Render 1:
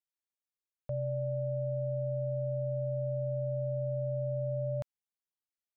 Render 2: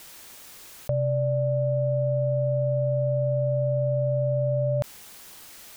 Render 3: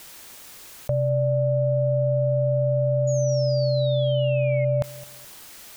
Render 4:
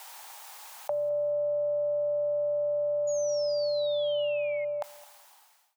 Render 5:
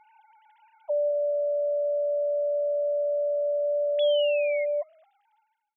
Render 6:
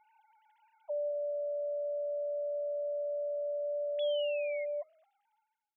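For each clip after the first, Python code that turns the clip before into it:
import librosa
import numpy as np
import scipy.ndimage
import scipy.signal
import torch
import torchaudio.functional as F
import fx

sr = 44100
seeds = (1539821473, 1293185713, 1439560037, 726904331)

y1 = fx.env_flatten(x, sr, amount_pct=100)
y1 = y1 * 10.0 ** (9.0 / 20.0)
y2 = fx.spec_paint(y1, sr, seeds[0], shape='fall', start_s=3.07, length_s=1.58, low_hz=2100.0, high_hz=6900.0, level_db=-40.0)
y2 = fx.echo_feedback(y2, sr, ms=213, feedback_pct=30, wet_db=-20)
y2 = y2 * 10.0 ** (2.0 / 20.0)
y3 = fx.fade_out_tail(y2, sr, length_s=1.56)
y3 = fx.highpass_res(y3, sr, hz=830.0, q=4.9)
y3 = y3 * 10.0 ** (-3.5 / 20.0)
y4 = fx.sine_speech(y3, sr)
y4 = y4 * 10.0 ** (3.0 / 20.0)
y5 = fx.hum_notches(y4, sr, base_hz=60, count=9)
y5 = y5 * 10.0 ** (-9.0 / 20.0)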